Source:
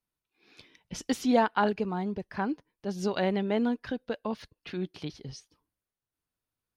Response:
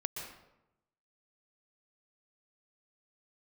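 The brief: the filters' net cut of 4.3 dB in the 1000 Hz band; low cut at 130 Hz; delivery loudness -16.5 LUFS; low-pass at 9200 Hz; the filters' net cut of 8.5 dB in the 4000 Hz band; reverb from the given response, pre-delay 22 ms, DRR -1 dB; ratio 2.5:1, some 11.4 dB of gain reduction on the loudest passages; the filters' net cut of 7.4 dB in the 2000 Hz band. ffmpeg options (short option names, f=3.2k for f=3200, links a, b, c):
-filter_complex "[0:a]highpass=130,lowpass=9.2k,equalizer=f=1k:t=o:g=-4,equalizer=f=2k:t=o:g=-7,equalizer=f=4k:t=o:g=-8.5,acompressor=threshold=-37dB:ratio=2.5,asplit=2[a][b];[1:a]atrim=start_sample=2205,adelay=22[c];[b][c]afir=irnorm=-1:irlink=0,volume=-0.5dB[d];[a][d]amix=inputs=2:normalize=0,volume=20dB"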